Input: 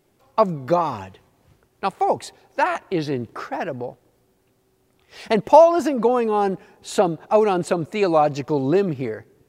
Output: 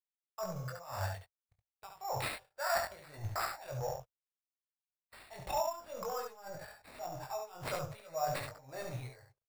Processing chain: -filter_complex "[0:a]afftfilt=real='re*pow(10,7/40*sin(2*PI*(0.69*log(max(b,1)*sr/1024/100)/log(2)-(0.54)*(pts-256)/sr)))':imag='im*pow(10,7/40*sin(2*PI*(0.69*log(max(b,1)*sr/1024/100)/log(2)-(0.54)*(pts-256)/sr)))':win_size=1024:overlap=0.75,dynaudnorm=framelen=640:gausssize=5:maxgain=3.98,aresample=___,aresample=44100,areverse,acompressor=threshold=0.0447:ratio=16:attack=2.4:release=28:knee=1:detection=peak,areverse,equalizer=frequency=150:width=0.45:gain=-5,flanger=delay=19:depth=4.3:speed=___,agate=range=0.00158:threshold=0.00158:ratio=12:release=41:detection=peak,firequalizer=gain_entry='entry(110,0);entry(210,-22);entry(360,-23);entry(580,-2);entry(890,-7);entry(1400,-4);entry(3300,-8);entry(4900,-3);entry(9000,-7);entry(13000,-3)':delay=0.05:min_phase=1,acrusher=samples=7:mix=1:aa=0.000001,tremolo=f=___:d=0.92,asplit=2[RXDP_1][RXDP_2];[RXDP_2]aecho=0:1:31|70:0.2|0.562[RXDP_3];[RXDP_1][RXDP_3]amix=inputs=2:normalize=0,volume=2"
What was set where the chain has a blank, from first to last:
16000, 0.61, 1.8